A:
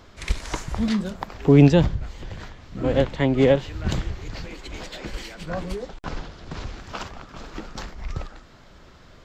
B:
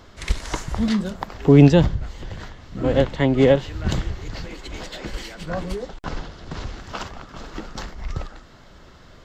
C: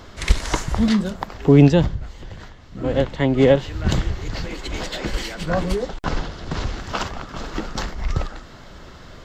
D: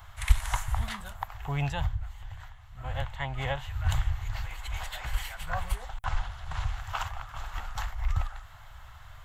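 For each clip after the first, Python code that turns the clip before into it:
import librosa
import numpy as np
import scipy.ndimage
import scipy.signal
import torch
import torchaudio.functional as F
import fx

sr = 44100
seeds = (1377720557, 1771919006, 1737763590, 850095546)

y1 = fx.notch(x, sr, hz=2400.0, q=16.0)
y1 = y1 * librosa.db_to_amplitude(2.0)
y2 = fx.rider(y1, sr, range_db=5, speed_s=2.0)
y2 = y2 * librosa.db_to_amplitude(1.0)
y3 = fx.curve_eq(y2, sr, hz=(110.0, 180.0, 310.0, 490.0, 770.0, 3300.0, 5000.0, 11000.0), db=(0, -22, -30, -22, -1, -4, -13, 8))
y3 = y3 * librosa.db_to_amplitude(-4.5)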